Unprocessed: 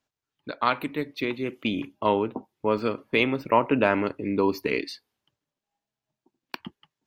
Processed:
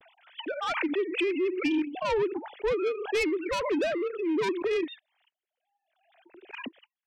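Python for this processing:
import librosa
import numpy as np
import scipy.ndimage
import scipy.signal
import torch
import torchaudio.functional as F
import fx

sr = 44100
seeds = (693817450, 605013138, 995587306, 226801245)

y = fx.sine_speech(x, sr)
y = 10.0 ** (-25.5 / 20.0) * np.tanh(y / 10.0 ** (-25.5 / 20.0))
y = fx.rider(y, sr, range_db=10, speed_s=2.0)
y = fx.peak_eq(y, sr, hz=1100.0, db=-8.0, octaves=0.85)
y = fx.pre_swell(y, sr, db_per_s=62.0)
y = F.gain(torch.from_numpy(y), 3.5).numpy()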